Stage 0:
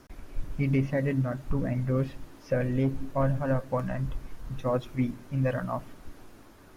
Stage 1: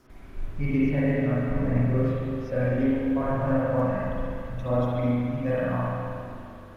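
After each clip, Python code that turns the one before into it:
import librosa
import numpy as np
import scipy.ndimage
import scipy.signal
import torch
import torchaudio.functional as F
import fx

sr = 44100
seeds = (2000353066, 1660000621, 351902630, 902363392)

y = fx.rev_spring(x, sr, rt60_s=2.5, pass_ms=(41, 49), chirp_ms=35, drr_db=-8.5)
y = y * 10.0 ** (-5.5 / 20.0)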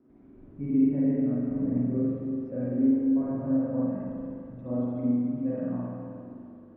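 y = fx.bandpass_q(x, sr, hz=270.0, q=2.2)
y = y * 10.0 ** (2.0 / 20.0)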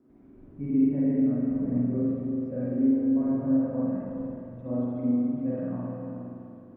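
y = x + 10.0 ** (-10.5 / 20.0) * np.pad(x, (int(419 * sr / 1000.0), 0))[:len(x)]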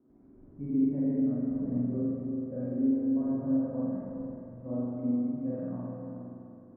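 y = scipy.signal.sosfilt(scipy.signal.butter(2, 1400.0, 'lowpass', fs=sr, output='sos'), x)
y = y * 10.0 ** (-4.0 / 20.0)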